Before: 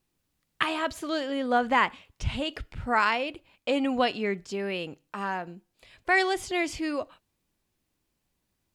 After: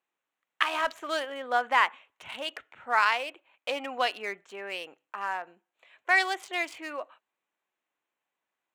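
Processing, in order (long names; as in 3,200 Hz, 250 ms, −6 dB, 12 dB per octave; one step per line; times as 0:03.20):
adaptive Wiener filter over 9 samples
high-pass filter 750 Hz 12 dB per octave
0:00.73–0:01.25: leveller curve on the samples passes 1
level +1.5 dB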